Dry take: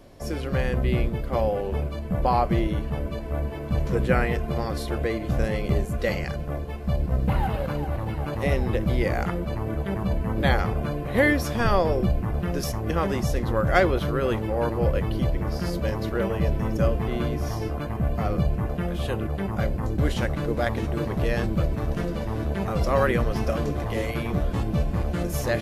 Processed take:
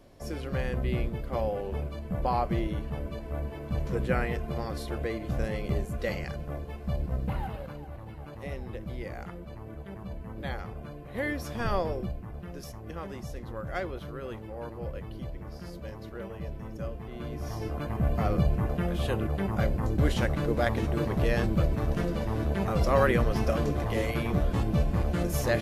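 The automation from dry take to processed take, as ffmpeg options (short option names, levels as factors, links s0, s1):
-af "volume=4.73,afade=t=out:st=7.01:d=0.79:silence=0.398107,afade=t=in:st=11.08:d=0.69:silence=0.446684,afade=t=out:st=11.77:d=0.42:silence=0.446684,afade=t=in:st=17.13:d=0.95:silence=0.237137"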